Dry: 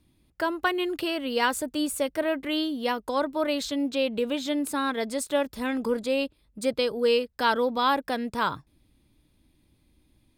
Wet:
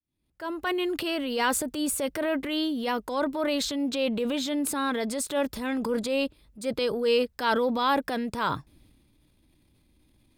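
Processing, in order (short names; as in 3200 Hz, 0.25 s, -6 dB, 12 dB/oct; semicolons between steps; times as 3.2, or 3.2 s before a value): opening faded in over 0.79 s; transient shaper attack -6 dB, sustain +6 dB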